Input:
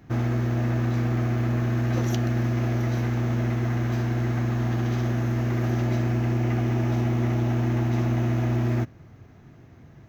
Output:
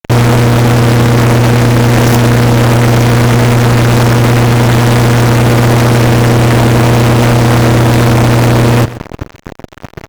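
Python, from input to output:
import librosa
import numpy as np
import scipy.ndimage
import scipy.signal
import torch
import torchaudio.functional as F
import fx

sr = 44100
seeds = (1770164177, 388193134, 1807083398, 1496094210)

p1 = fx.tracing_dist(x, sr, depth_ms=0.35)
p2 = fx.fuzz(p1, sr, gain_db=44.0, gate_db=-43.0)
p3 = p2 + fx.echo_single(p2, sr, ms=129, db=-17.5, dry=0)
y = F.gain(torch.from_numpy(p3), 8.0).numpy()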